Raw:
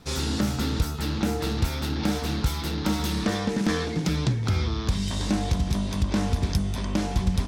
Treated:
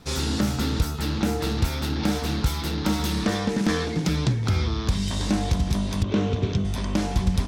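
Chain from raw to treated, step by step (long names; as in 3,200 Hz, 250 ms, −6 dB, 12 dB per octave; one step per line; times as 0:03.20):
0:06.03–0:06.65: loudspeaker in its box 110–5,600 Hz, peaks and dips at 110 Hz +10 dB, 420 Hz +10 dB, 850 Hz −7 dB, 1,800 Hz −5 dB, 3,000 Hz +3 dB, 4,900 Hz −10 dB
level +1.5 dB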